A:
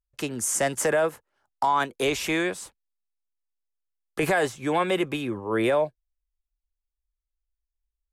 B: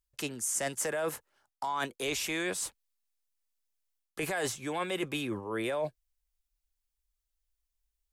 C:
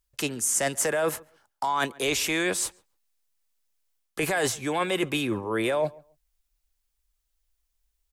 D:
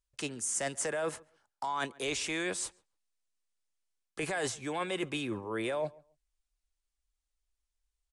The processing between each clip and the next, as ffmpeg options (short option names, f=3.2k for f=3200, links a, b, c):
-af "highshelf=f=2.7k:g=8,areverse,acompressor=threshold=-32dB:ratio=4,areverse"
-filter_complex "[0:a]asplit=2[a][b];[b]adelay=137,lowpass=f=2k:p=1,volume=-23dB,asplit=2[c][d];[d]adelay=137,lowpass=f=2k:p=1,volume=0.2[e];[a][c][e]amix=inputs=3:normalize=0,volume=7dB"
-af "aresample=22050,aresample=44100,volume=-8dB"